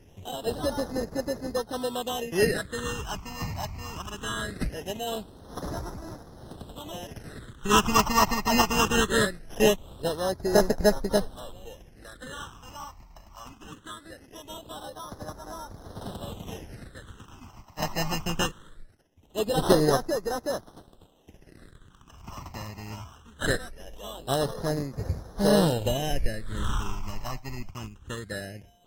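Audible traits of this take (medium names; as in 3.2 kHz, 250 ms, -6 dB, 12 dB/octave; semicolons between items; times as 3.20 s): aliases and images of a low sample rate 2.3 kHz, jitter 0%; phasing stages 8, 0.21 Hz, lowest notch 460–2900 Hz; AAC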